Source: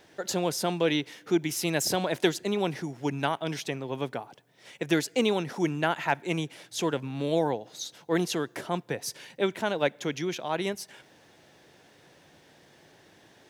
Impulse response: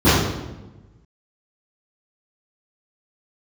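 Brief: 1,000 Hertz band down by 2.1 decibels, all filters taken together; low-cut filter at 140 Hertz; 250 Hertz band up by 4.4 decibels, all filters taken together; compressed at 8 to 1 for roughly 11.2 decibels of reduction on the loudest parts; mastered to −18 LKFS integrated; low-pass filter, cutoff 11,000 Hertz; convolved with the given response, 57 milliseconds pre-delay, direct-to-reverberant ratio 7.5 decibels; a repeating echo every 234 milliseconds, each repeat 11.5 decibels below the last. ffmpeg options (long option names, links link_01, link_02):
-filter_complex "[0:a]highpass=140,lowpass=11000,equalizer=frequency=250:width_type=o:gain=7.5,equalizer=frequency=1000:width_type=o:gain=-3.5,acompressor=threshold=-28dB:ratio=8,aecho=1:1:234|468|702:0.266|0.0718|0.0194,asplit=2[link_01][link_02];[1:a]atrim=start_sample=2205,adelay=57[link_03];[link_02][link_03]afir=irnorm=-1:irlink=0,volume=-33.5dB[link_04];[link_01][link_04]amix=inputs=2:normalize=0,volume=12.5dB"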